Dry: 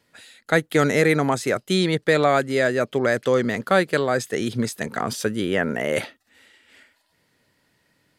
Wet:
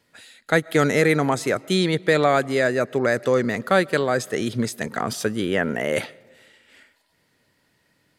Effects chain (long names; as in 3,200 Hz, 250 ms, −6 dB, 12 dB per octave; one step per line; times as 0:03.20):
0:02.60–0:03.56: notch filter 3,200 Hz, Q 6.2
convolution reverb RT60 1.4 s, pre-delay 80 ms, DRR 24 dB